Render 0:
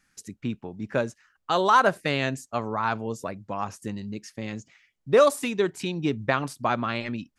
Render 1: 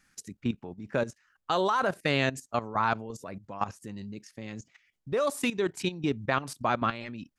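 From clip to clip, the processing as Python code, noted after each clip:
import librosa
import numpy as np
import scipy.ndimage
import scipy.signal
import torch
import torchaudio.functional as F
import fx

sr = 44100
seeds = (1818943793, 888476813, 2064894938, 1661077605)

y = fx.level_steps(x, sr, step_db=14)
y = F.gain(torch.from_numpy(y), 2.5).numpy()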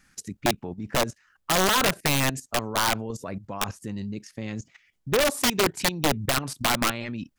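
y = fx.low_shelf(x, sr, hz=220.0, db=4.0)
y = (np.mod(10.0 ** (20.0 / 20.0) * y + 1.0, 2.0) - 1.0) / 10.0 ** (20.0 / 20.0)
y = F.gain(torch.from_numpy(y), 5.0).numpy()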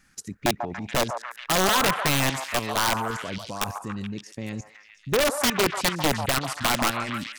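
y = fx.echo_stepped(x, sr, ms=142, hz=900.0, octaves=0.7, feedback_pct=70, wet_db=-3.0)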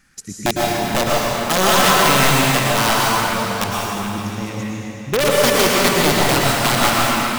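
y = fx.rev_plate(x, sr, seeds[0], rt60_s=2.9, hf_ratio=0.85, predelay_ms=95, drr_db=-4.0)
y = F.gain(torch.from_numpy(y), 3.5).numpy()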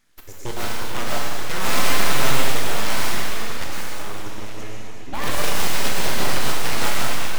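y = fx.comb_fb(x, sr, f0_hz=130.0, decay_s=0.64, harmonics='all', damping=0.0, mix_pct=70)
y = np.abs(y)
y = fx.rev_schroeder(y, sr, rt60_s=0.9, comb_ms=25, drr_db=5.5)
y = F.gain(torch.from_numpy(y), 2.0).numpy()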